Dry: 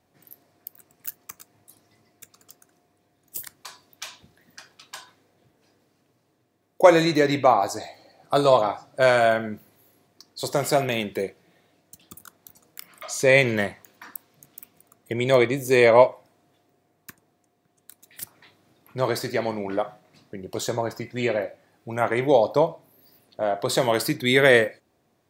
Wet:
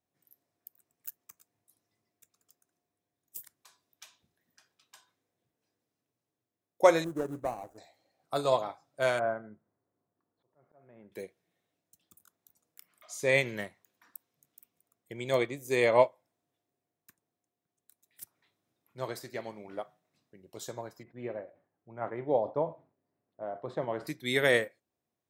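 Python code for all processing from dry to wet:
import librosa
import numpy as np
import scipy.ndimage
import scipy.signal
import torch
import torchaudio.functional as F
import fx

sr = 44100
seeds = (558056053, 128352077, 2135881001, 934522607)

y = fx.chain(x, sr, fx.median_filter(points=41),
    fx.band_shelf(hz=3300.0, db=-12.5, octaves=1.7), at=(7.04, 7.78))
y = fx.chain(y, sr, fx.lowpass(hz=1500.0, slope=24),
    fx.auto_swell(attack_ms=602.0), at=(9.19, 11.12))
y = fx.chain(y, sr, fx.lowpass(hz=1300.0, slope=12),
    fx.sustainer(db_per_s=140.0), at=(21.03, 24.07))
y = fx.high_shelf(y, sr, hz=4700.0, db=6.0)
y = fx.notch(y, sr, hz=4500.0, q=13.0)
y = fx.upward_expand(y, sr, threshold_db=-37.0, expansion=1.5)
y = y * 10.0 ** (-6.5 / 20.0)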